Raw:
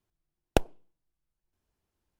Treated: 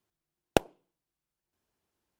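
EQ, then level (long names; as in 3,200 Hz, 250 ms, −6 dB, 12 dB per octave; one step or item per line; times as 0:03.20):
high-pass filter 190 Hz 6 dB per octave
+2.0 dB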